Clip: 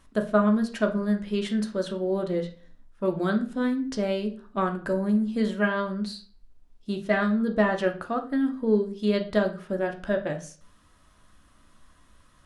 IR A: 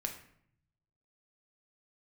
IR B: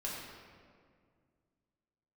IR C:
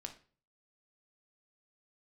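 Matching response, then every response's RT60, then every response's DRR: C; 0.65, 2.0, 0.40 s; 2.5, -5.5, 4.0 dB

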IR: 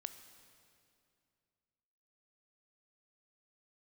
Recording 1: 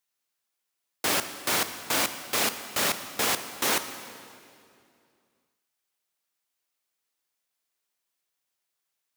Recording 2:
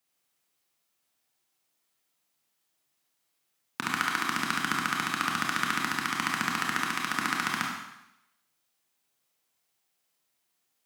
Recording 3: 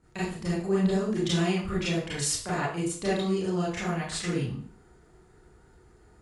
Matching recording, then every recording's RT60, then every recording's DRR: 1; 2.5, 0.85, 0.50 s; 9.5, -2.0, -9.5 dB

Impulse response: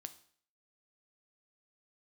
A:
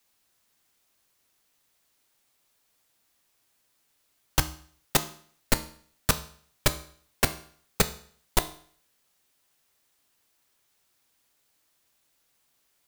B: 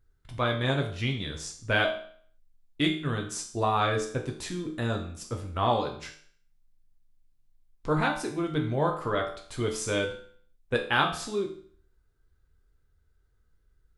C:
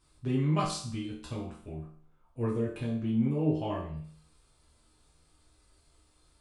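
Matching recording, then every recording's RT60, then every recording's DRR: A; 0.55, 0.55, 0.55 s; 10.0, 2.0, -5.0 dB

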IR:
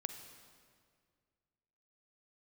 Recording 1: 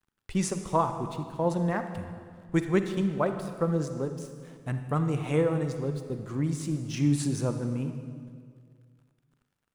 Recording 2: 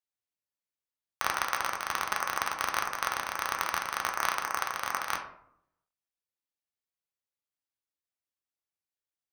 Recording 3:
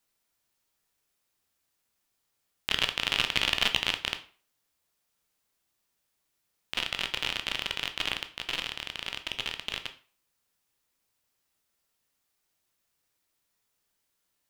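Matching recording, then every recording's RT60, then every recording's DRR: 1; 2.0, 0.70, 0.40 s; 7.5, 1.5, 7.0 dB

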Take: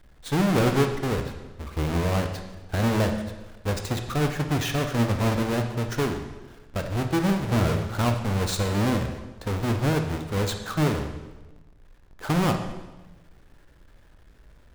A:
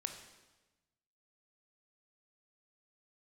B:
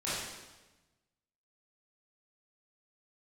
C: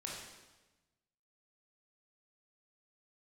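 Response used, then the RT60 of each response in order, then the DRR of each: A; 1.1, 1.1, 1.1 s; 5.5, -11.5, -3.5 dB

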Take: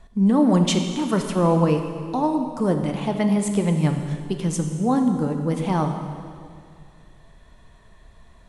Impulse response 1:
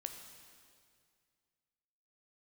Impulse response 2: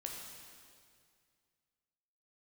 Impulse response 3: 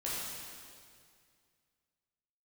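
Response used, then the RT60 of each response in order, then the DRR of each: 1; 2.1, 2.1, 2.1 s; 5.0, -0.5, -8.5 dB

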